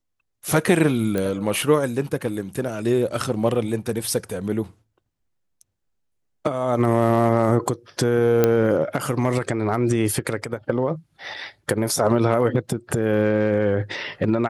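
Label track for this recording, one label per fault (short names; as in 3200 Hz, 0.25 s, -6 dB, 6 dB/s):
1.180000	1.180000	pop -12 dBFS
8.440000	8.440000	pop -4 dBFS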